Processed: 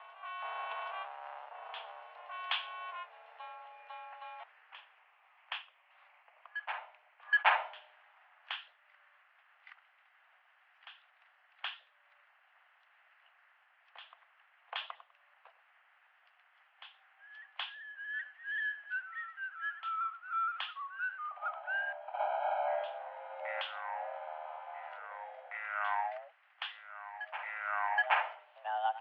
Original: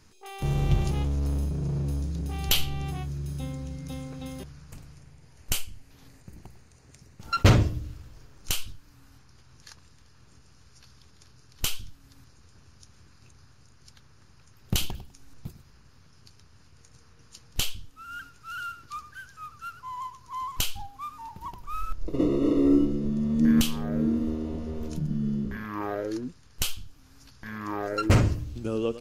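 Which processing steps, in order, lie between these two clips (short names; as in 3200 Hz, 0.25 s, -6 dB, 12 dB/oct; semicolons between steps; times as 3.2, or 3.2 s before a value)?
reverse echo 0.773 s -13 dB; mistuned SSB +310 Hz 480–2500 Hz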